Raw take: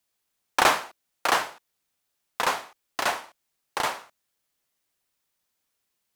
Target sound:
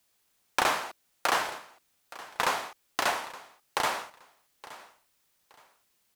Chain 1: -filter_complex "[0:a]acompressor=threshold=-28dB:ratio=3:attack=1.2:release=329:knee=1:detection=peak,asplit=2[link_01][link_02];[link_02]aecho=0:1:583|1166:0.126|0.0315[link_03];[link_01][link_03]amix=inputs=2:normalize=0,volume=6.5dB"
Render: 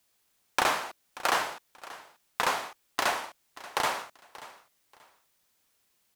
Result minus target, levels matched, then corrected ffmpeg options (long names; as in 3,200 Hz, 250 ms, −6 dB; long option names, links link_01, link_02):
echo 287 ms early
-filter_complex "[0:a]acompressor=threshold=-28dB:ratio=3:attack=1.2:release=329:knee=1:detection=peak,asplit=2[link_01][link_02];[link_02]aecho=0:1:870|1740:0.126|0.0315[link_03];[link_01][link_03]amix=inputs=2:normalize=0,volume=6.5dB"